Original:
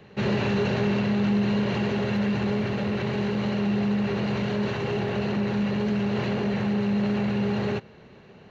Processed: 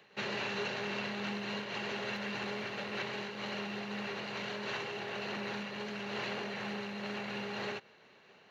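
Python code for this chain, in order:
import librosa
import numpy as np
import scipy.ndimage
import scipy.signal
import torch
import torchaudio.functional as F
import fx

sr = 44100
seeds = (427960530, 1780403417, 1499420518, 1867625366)

y = fx.highpass(x, sr, hz=1300.0, slope=6)
y = fx.am_noise(y, sr, seeds[0], hz=5.7, depth_pct=55)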